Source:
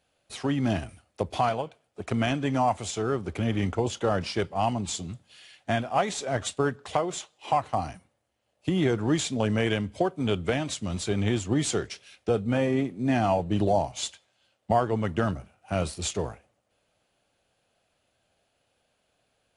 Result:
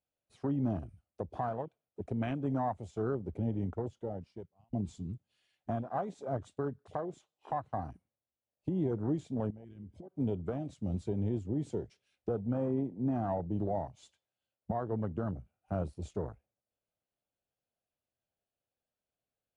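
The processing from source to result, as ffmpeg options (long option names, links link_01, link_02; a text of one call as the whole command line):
ffmpeg -i in.wav -filter_complex "[0:a]asettb=1/sr,asplit=3[link_01][link_02][link_03];[link_01]atrim=end=9.504[link_04];[link_02]atrim=start=9.5:end=10.16,asetpts=PTS-STARTPTS,afade=type=in:duration=0.004:curve=qsin,afade=type=out:start_time=0.656:duration=0.004:curve=qsin,acompressor=threshold=-38dB:ratio=16:attack=3.2:release=140:knee=1:detection=peak[link_05];[link_03]atrim=start=10.156[link_06];[link_04][link_05]acrossfade=duration=0.004:curve1=hsin:curve2=qsin[link_07];[link_07][link_06]acrossfade=duration=0.004:curve1=qsin:curve2=hsin,asplit=2[link_08][link_09];[link_08]atrim=end=4.73,asetpts=PTS-STARTPTS,afade=type=out:start_time=3.05:duration=1.68[link_10];[link_09]atrim=start=4.73,asetpts=PTS-STARTPTS,afade=type=in:duration=0.004:curve=hsin[link_11];[link_10][link_11]concat=n=2:v=0:a=1,tiltshelf=frequency=840:gain=3.5,afwtdn=0.0251,alimiter=limit=-17.5dB:level=0:latency=1:release=404,volume=-6dB" out.wav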